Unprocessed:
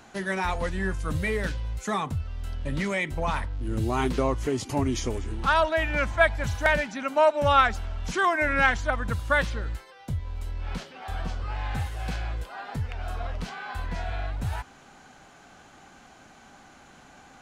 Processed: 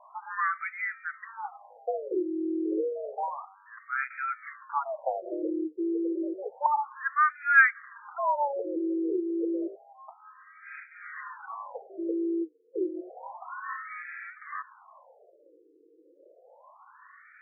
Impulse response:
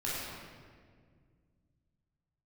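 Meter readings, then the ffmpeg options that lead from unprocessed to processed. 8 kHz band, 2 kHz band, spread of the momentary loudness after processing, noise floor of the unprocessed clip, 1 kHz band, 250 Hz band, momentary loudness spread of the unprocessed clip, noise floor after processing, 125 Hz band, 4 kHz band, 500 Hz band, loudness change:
under -35 dB, -1.5 dB, 17 LU, -52 dBFS, -3.0 dB, +0.5 dB, 13 LU, -60 dBFS, under -40 dB, under -40 dB, -5.5 dB, -3.0 dB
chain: -af "equalizer=f=130:t=o:w=0.58:g=-5.5,afreqshift=280,afftfilt=real='re*between(b*sr/1024,340*pow(1800/340,0.5+0.5*sin(2*PI*0.3*pts/sr))/1.41,340*pow(1800/340,0.5+0.5*sin(2*PI*0.3*pts/sr))*1.41)':imag='im*between(b*sr/1024,340*pow(1800/340,0.5+0.5*sin(2*PI*0.3*pts/sr))/1.41,340*pow(1800/340,0.5+0.5*sin(2*PI*0.3*pts/sr))*1.41)':win_size=1024:overlap=0.75,volume=1.26"

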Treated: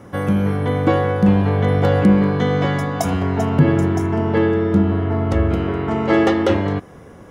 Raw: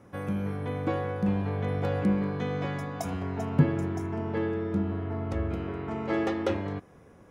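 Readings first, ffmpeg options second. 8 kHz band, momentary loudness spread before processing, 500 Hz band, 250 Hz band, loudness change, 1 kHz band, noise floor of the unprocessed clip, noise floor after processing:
+13.0 dB, 7 LU, +13.0 dB, +12.5 dB, +12.5 dB, +13.0 dB, -54 dBFS, -41 dBFS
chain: -af "equalizer=f=2800:w=4.2:g=3,bandreject=f=2500:w=11,alimiter=level_in=5.96:limit=0.891:release=50:level=0:latency=1,volume=0.75"

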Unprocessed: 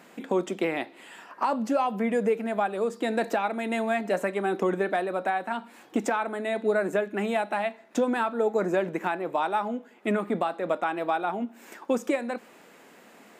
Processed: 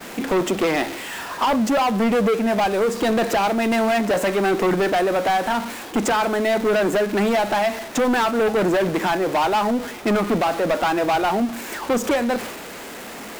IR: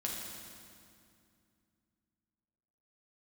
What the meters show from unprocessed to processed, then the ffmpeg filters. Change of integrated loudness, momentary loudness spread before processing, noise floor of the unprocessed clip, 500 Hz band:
+7.5 dB, 7 LU, -53 dBFS, +7.0 dB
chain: -af "aeval=exprs='val(0)+0.5*0.0178*sgn(val(0))':c=same,agate=range=0.0224:threshold=0.0158:ratio=3:detection=peak,asoftclip=type=hard:threshold=0.0562,volume=2.82"

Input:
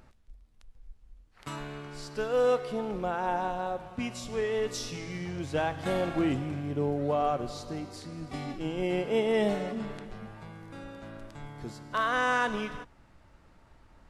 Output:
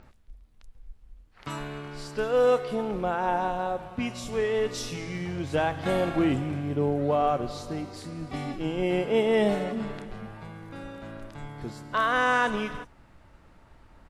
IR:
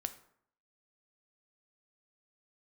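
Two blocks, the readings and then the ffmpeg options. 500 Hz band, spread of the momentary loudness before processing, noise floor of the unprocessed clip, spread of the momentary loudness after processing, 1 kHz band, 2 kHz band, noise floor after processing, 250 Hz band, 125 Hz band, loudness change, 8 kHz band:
+3.5 dB, 18 LU, -60 dBFS, 18 LU, +3.5 dB, +3.5 dB, -57 dBFS, +3.5 dB, +3.5 dB, +3.5 dB, +1.0 dB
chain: -filter_complex "[0:a]acrossover=split=5900[s0][s1];[s1]adelay=30[s2];[s0][s2]amix=inputs=2:normalize=0,volume=1.5"

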